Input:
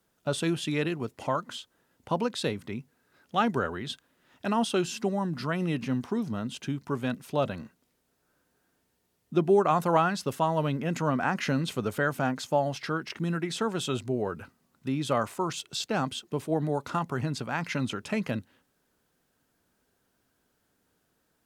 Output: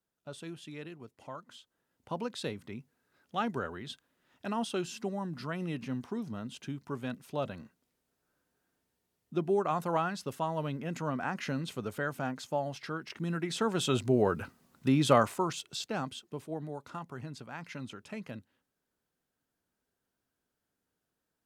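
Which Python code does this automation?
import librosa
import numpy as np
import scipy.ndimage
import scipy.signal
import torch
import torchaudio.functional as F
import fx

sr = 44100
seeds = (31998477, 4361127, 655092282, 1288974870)

y = fx.gain(x, sr, db=fx.line((1.29, -15.5), (2.32, -7.0), (13.0, -7.0), (14.21, 4.0), (15.13, 4.0), (15.56, -3.5), (16.75, -12.0)))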